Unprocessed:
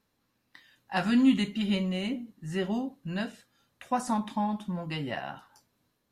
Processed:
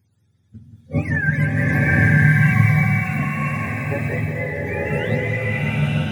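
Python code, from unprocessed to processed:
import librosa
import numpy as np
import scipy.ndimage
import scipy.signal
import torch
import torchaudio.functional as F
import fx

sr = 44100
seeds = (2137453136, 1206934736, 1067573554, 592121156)

p1 = fx.octave_mirror(x, sr, pivot_hz=650.0)
p2 = fx.bass_treble(p1, sr, bass_db=11, treble_db=15)
p3 = p2 + fx.echo_single(p2, sr, ms=180, db=-8.5, dry=0)
p4 = fx.rev_bloom(p3, sr, seeds[0], attack_ms=990, drr_db=-6.5)
y = F.gain(torch.from_numpy(p4), 1.0).numpy()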